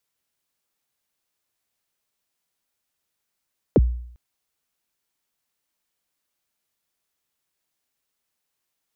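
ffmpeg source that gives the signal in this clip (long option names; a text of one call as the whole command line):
ffmpeg -f lavfi -i "aevalsrc='0.355*pow(10,-3*t/0.65)*sin(2*PI*(580*0.036/log(60/580)*(exp(log(60/580)*min(t,0.036)/0.036)-1)+60*max(t-0.036,0)))':duration=0.4:sample_rate=44100" out.wav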